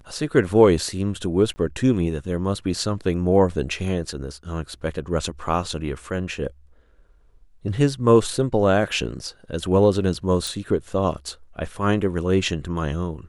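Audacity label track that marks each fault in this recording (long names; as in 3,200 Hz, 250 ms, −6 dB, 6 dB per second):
1.540000	1.560000	drop-out 20 ms
10.470000	10.470000	click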